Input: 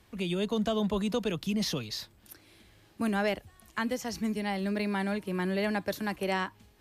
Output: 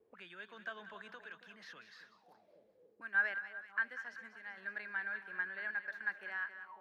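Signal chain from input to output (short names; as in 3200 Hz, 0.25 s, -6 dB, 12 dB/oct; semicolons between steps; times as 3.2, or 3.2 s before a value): random-step tremolo; split-band echo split 960 Hz, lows 0.274 s, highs 0.192 s, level -11 dB; auto-wah 410–1600 Hz, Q 11, up, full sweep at -38 dBFS; gain +8 dB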